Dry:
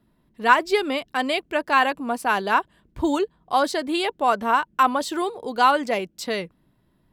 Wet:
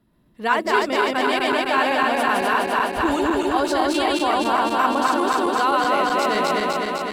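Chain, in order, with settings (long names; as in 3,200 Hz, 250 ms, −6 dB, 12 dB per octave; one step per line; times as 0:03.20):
feedback delay that plays each chunk backwards 127 ms, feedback 85%, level −1 dB
in parallel at −2 dB: compressor whose output falls as the input rises −20 dBFS
on the sum: level −6.5 dB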